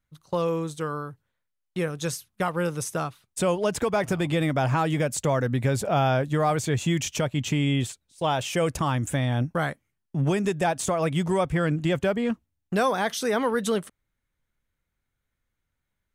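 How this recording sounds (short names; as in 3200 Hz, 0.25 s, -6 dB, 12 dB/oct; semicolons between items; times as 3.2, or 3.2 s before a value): noise floor -80 dBFS; spectral tilt -5.5 dB/oct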